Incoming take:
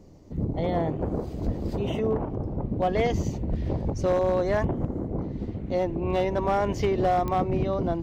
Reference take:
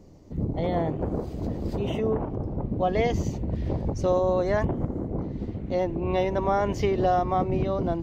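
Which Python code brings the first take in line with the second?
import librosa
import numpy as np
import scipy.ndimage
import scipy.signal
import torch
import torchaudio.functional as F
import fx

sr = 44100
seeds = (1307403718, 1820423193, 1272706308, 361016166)

y = fx.fix_declip(x, sr, threshold_db=-17.0)
y = fx.fix_declick_ar(y, sr, threshold=10.0)
y = fx.highpass(y, sr, hz=140.0, slope=24, at=(1.45, 1.57), fade=0.02)
y = fx.highpass(y, sr, hz=140.0, slope=24, at=(3.49, 3.61), fade=0.02)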